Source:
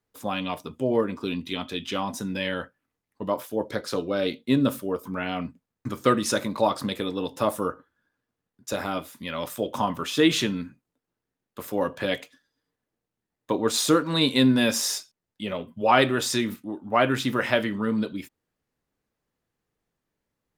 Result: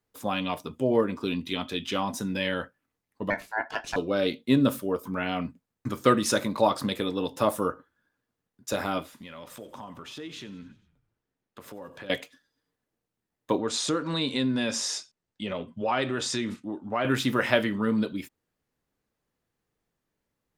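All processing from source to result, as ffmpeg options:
-filter_complex "[0:a]asettb=1/sr,asplit=3[a][b][c];[a]atrim=end=3.304[d];[b]atrim=start=3.3:end=3.96,asetpts=PTS-STARTPTS,afade=t=in:d=0.004:c=qsin,afade=t=out:st=0.656:d=0.004:c=qsin,adynamicsmooth=sensitivity=7.5:basefreq=7.8k,aeval=exprs='val(0)*sin(2*PI*1200*n/s)':c=same[e];[c]atrim=start=3.956[f];[d][e]acrossfade=d=0.004:c1=hsin:c2=qsin[g];[g][f]acrossfade=d=0.004:c1=qsin:c2=hsin,asettb=1/sr,asplit=3[h][i][j];[h]atrim=end=9.034[k];[i]atrim=start=9.03:end=12.1,asetpts=PTS-STARTPTS,afade=t=in:d=0.004:c=qsin,afade=t=out:st=3.066:d=0.004:c=qsin,highshelf=f=8.3k:g=-11.5,acompressor=threshold=-41dB:ratio=4:attack=3.2:release=140:knee=1:detection=peak,asplit=6[l][m][n][o][p][q];[m]adelay=91,afreqshift=-31,volume=-19.5dB[r];[n]adelay=182,afreqshift=-62,volume=-23.7dB[s];[o]adelay=273,afreqshift=-93,volume=-27.8dB[t];[p]adelay=364,afreqshift=-124,volume=-32dB[u];[q]adelay=455,afreqshift=-155,volume=-36.1dB[v];[l][r][s][t][u][v]amix=inputs=6:normalize=0,atrim=end_sample=135387[w];[j]atrim=start=12.096[x];[k][w]acrossfade=d=0.004:c1=hsin:c2=qsin[y];[y][x]acrossfade=d=0.004:c1=qsin:c2=hsin,asettb=1/sr,asplit=3[z][aa][ab];[z]atrim=end=13.584[ac];[aa]atrim=start=13.58:end=17.05,asetpts=PTS-STARTPTS,afade=t=in:d=0.004:c=qsin,afade=t=out:st=3.466:d=0.004:c=qsin,lowpass=f=8.4k:w=0.5412,lowpass=f=8.4k:w=1.3066,acompressor=threshold=-28dB:ratio=2:attack=3.2:release=140:knee=1:detection=peak[ad];[ab]atrim=start=17.046[ae];[ac][ad]acrossfade=d=0.004:c1=hsin:c2=qsin[af];[af][ae]acrossfade=d=0.004:c1=qsin:c2=hsin"

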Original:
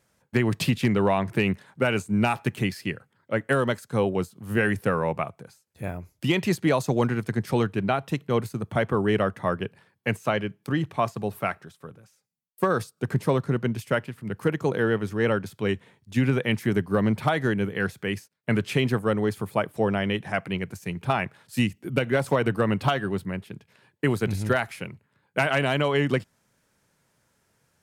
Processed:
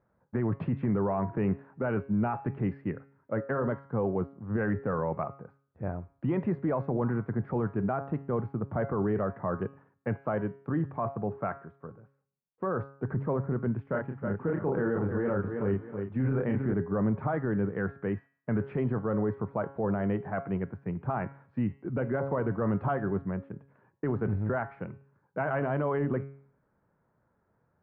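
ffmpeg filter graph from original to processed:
-filter_complex "[0:a]asettb=1/sr,asplit=3[a][b][c];[a]atrim=end=13.824[d];[b]atrim=start=13.82:end=16.74,asetpts=PTS-STARTPTS,afade=t=in:d=0.004:c=qsin,afade=t=out:st=2.916:d=0.004:c=qsin,asplit=2[e][f];[f]adelay=30,volume=-5dB[g];[e][g]amix=inputs=2:normalize=0,atrim=end_sample=128772,aecho=1:1:318|636|954:0.299|0.0896|0.0269,atrim=end_sample=128772[h];[c]atrim=start=16.736[i];[d][h]acrossfade=d=0.004:c1=hsin:c2=qsin[j];[j][i]acrossfade=d=0.004:c1=qsin:c2=hsin,lowpass=f=1.4k:w=0.5412,lowpass=f=1.4k:w=1.3066,bandreject=f=137.7:t=h:w=4,bandreject=f=275.4:t=h:w=4,bandreject=f=413.1:t=h:w=4,bandreject=f=550.8:t=h:w=4,bandreject=f=688.5:t=h:w=4,bandreject=f=826.2:t=h:w=4,bandreject=f=963.9:t=h:w=4,bandreject=f=1.1016k:t=h:w=4,bandreject=f=1.2393k:t=h:w=4,bandreject=f=1.377k:t=h:w=4,bandreject=f=1.5147k:t=h:w=4,bandreject=f=1.6524k:t=h:w=4,bandreject=f=1.7901k:t=h:w=4,bandreject=f=1.9278k:t=h:w=4,bandreject=f=2.0655k:t=h:w=4,bandreject=f=2.2032k:t=h:w=4,bandreject=f=2.3409k:t=h:w=4,bandreject=f=2.4786k:t=h:w=4,bandreject=f=2.6163k:t=h:w=4,bandreject=f=2.754k:t=h:w=4,bandreject=f=2.8917k:t=h:w=4,bandreject=f=3.0294k:t=h:w=4,bandreject=f=3.1671k:t=h:w=4,bandreject=f=3.3048k:t=h:w=4,bandreject=f=3.4425k:t=h:w=4,bandreject=f=3.5802k:t=h:w=4,bandreject=f=3.7179k:t=h:w=4,bandreject=f=3.8556k:t=h:w=4,bandreject=f=3.9933k:t=h:w=4,bandreject=f=4.131k:t=h:w=4,bandreject=f=4.2687k:t=h:w=4,bandreject=f=4.4064k:t=h:w=4,bandreject=f=4.5441k:t=h:w=4,alimiter=limit=-19.5dB:level=0:latency=1:release=12,volume=-1.5dB"

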